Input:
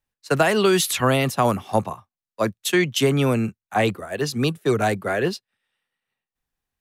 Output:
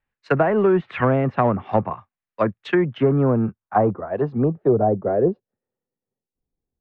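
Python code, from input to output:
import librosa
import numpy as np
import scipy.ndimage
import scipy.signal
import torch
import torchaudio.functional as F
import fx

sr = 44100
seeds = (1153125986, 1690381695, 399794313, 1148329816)

p1 = fx.env_lowpass_down(x, sr, base_hz=880.0, full_db=-16.5)
p2 = np.clip(p1, -10.0 ** (-20.5 / 20.0), 10.0 ** (-20.5 / 20.0))
p3 = p1 + (p2 * 10.0 ** (-11.0 / 20.0))
y = fx.filter_sweep_lowpass(p3, sr, from_hz=2100.0, to_hz=420.0, start_s=2.39, end_s=5.8, q=1.5)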